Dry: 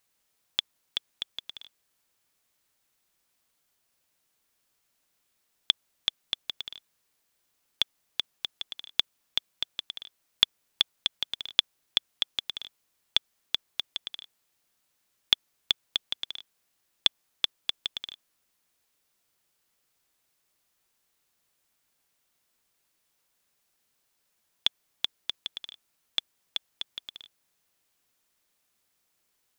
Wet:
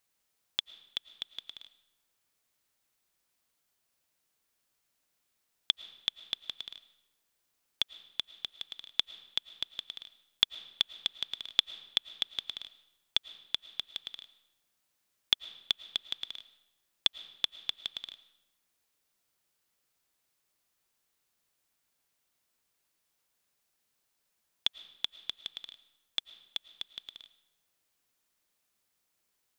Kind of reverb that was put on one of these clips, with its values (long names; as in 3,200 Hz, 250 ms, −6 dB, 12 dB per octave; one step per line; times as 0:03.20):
comb and all-pass reverb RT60 0.95 s, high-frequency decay 0.8×, pre-delay 70 ms, DRR 16.5 dB
level −4 dB